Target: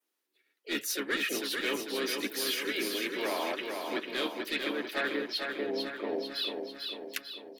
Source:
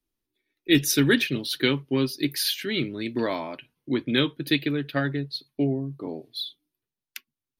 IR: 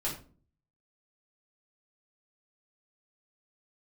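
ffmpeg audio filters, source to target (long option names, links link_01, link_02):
-filter_complex "[0:a]highpass=frequency=380:width=0.5412,highpass=frequency=380:width=1.3066,asoftclip=type=tanh:threshold=-16dB,adynamicequalizer=threshold=0.00562:dfrequency=4200:dqfactor=2.3:tfrequency=4200:tqfactor=2.3:attack=5:release=100:ratio=0.375:range=3:mode=cutabove:tftype=bell,asplit=4[link_01][link_02][link_03][link_04];[link_02]asetrate=33038,aresample=44100,atempo=1.33484,volume=-10dB[link_05];[link_03]asetrate=52444,aresample=44100,atempo=0.840896,volume=-12dB[link_06];[link_04]asetrate=55563,aresample=44100,atempo=0.793701,volume=-12dB[link_07];[link_01][link_05][link_06][link_07]amix=inputs=4:normalize=0,areverse,acompressor=threshold=-35dB:ratio=6,areverse,equalizer=frequency=1600:width_type=o:width=0.77:gain=3,asplit=2[link_08][link_09];[link_09]aecho=0:1:446|892|1338|1784|2230|2676|3122:0.596|0.328|0.18|0.0991|0.0545|0.03|0.0165[link_10];[link_08][link_10]amix=inputs=2:normalize=0,volume=3.5dB"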